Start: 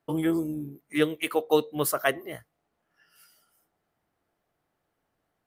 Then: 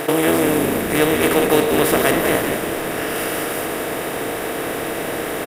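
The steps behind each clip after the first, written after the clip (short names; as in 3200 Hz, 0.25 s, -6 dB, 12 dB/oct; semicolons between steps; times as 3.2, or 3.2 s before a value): per-bin compression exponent 0.2; on a send: frequency-shifting echo 0.189 s, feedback 53%, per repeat -61 Hz, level -6 dB; on the sum: gain +1.5 dB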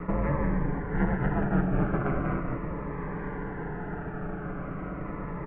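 minimum comb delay 7 ms; mistuned SSB -270 Hz 180–2000 Hz; cascading phaser falling 0.39 Hz; gain -6.5 dB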